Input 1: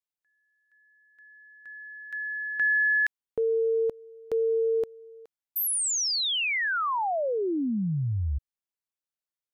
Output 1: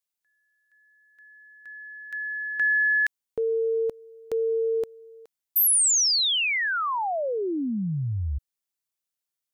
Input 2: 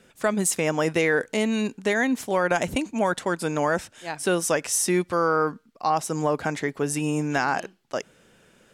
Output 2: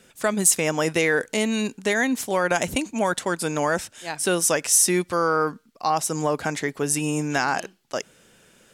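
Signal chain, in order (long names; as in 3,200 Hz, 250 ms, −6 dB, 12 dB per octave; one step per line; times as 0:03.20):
high-shelf EQ 3,600 Hz +8 dB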